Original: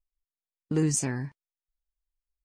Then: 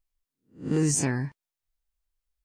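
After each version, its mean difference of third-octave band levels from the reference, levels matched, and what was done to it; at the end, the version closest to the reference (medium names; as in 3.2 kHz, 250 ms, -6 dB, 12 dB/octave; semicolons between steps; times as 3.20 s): 2.5 dB: reverse spectral sustain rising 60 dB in 0.31 s; peak limiter -19 dBFS, peak gain reduction 5 dB; trim +3.5 dB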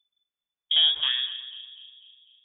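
18.5 dB: two-band feedback delay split 890 Hz, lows 248 ms, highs 120 ms, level -13 dB; frequency inversion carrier 3.5 kHz; trim +4 dB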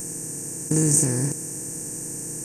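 9.5 dB: spectral levelling over time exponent 0.2; FFT filter 140 Hz 0 dB, 3.5 kHz -12 dB, 11 kHz +10 dB; trim +3 dB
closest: first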